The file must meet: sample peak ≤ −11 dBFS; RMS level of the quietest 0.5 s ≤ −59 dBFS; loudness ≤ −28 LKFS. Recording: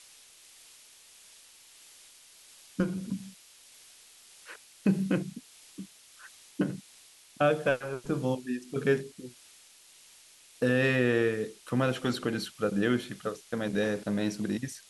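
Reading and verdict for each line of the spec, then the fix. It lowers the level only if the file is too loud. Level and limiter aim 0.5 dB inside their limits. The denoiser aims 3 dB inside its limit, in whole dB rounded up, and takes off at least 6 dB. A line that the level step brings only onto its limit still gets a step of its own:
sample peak −13.5 dBFS: in spec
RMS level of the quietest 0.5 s −57 dBFS: out of spec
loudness −30.0 LKFS: in spec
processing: broadband denoise 6 dB, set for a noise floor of −57 dBFS

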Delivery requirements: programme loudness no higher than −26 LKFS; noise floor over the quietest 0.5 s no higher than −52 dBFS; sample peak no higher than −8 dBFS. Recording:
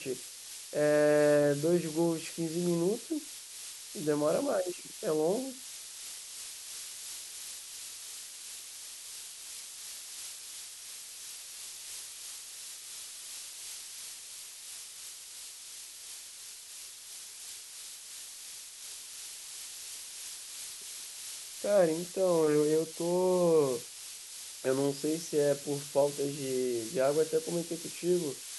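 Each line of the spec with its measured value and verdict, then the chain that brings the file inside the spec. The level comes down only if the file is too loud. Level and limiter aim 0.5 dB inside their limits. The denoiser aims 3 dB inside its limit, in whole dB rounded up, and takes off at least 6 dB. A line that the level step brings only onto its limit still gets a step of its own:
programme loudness −33.5 LKFS: in spec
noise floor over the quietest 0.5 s −47 dBFS: out of spec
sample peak −14.0 dBFS: in spec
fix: broadband denoise 8 dB, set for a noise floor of −47 dBFS

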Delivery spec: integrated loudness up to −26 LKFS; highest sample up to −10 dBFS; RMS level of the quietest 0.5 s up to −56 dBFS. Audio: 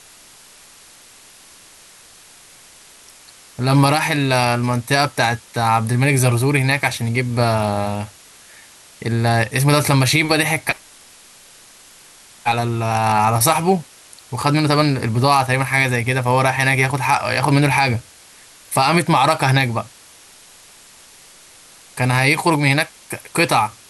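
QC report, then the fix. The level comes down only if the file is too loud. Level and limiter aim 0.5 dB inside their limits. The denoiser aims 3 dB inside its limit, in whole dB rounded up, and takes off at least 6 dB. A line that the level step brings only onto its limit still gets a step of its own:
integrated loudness −17.0 LKFS: out of spec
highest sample −4.0 dBFS: out of spec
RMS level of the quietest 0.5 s −46 dBFS: out of spec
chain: broadband denoise 6 dB, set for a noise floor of −46 dBFS
level −9.5 dB

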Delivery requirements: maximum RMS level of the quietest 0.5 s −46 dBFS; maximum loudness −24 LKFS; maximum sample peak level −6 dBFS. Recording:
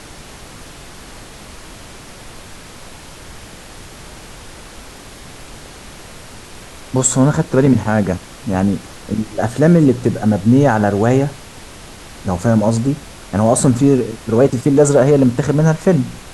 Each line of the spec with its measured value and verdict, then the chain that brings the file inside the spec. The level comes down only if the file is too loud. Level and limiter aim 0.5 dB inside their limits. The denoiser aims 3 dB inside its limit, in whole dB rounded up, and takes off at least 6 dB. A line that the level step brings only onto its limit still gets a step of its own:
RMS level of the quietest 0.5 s −36 dBFS: out of spec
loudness −15.0 LKFS: out of spec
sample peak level −1.5 dBFS: out of spec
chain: broadband denoise 6 dB, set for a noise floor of −36 dBFS
level −9.5 dB

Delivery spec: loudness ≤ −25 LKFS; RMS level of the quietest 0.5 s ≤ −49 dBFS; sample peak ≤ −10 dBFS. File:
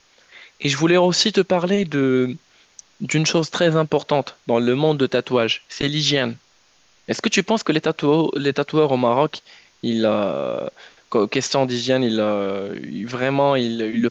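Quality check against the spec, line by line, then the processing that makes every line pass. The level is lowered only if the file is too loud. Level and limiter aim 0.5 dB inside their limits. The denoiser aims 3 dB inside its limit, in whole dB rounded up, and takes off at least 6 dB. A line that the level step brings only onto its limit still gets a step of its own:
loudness −20.0 LKFS: out of spec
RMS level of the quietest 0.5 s −57 dBFS: in spec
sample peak −5.5 dBFS: out of spec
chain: level −5.5 dB

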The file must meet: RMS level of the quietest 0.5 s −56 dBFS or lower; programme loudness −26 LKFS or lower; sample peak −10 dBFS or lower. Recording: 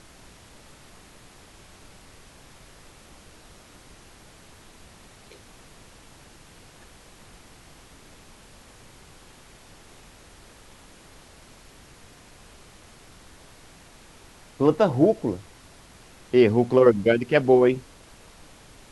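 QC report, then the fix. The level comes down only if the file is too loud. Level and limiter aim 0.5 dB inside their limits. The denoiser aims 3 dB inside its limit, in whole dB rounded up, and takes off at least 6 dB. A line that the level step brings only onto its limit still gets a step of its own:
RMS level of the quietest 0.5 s −50 dBFS: out of spec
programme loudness −20.5 LKFS: out of spec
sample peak −5.0 dBFS: out of spec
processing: broadband denoise 6 dB, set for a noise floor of −50 dBFS
level −6 dB

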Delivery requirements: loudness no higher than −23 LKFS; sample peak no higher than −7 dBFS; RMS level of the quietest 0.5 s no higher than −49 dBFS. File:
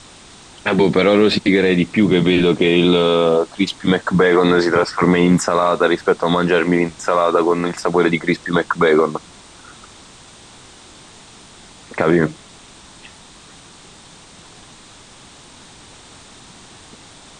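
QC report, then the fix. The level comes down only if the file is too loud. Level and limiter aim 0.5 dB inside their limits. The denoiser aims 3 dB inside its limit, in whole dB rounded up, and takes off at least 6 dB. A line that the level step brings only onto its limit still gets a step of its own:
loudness −16.0 LKFS: out of spec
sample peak −4.0 dBFS: out of spec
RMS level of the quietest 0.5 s −43 dBFS: out of spec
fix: level −7.5 dB

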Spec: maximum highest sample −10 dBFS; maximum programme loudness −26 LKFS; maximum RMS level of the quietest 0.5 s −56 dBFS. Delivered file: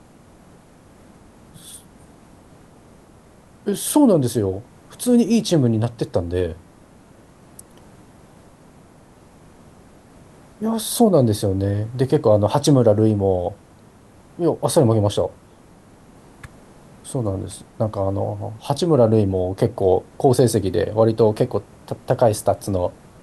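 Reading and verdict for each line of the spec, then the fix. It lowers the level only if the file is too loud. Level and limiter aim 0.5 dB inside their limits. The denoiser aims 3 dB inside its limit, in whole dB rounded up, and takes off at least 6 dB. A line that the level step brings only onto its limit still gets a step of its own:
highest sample −3.5 dBFS: out of spec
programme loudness −19.5 LKFS: out of spec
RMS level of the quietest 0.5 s −48 dBFS: out of spec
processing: broadband denoise 6 dB, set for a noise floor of −48 dBFS
level −7 dB

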